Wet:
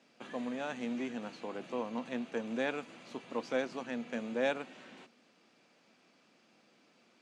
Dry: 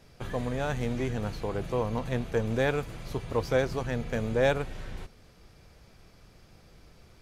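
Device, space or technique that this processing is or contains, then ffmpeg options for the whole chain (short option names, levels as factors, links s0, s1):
television speaker: -af "highpass=f=230:w=0.5412,highpass=f=230:w=1.3066,equalizer=f=240:t=q:w=4:g=7,equalizer=f=420:t=q:w=4:g=-5,equalizer=f=2700:t=q:w=4:g=5,equalizer=f=5300:t=q:w=4:g=-3,lowpass=f=8000:w=0.5412,lowpass=f=8000:w=1.3066,volume=0.473"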